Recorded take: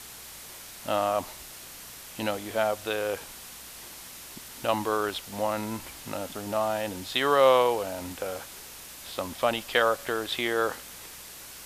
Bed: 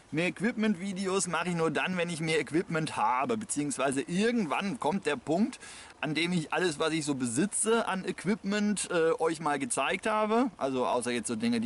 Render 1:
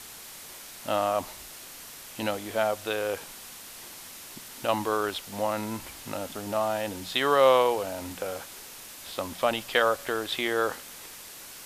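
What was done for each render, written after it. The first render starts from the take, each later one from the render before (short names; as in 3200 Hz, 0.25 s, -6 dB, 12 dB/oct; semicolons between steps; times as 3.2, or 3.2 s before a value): de-hum 60 Hz, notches 3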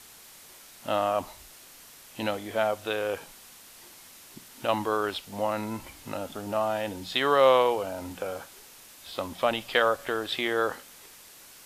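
noise print and reduce 6 dB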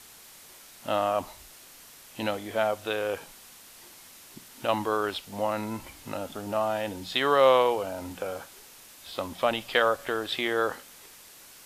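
nothing audible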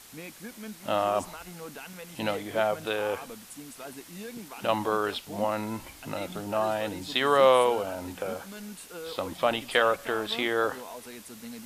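add bed -13.5 dB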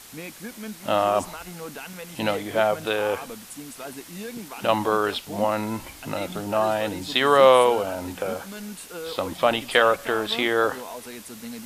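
gain +5 dB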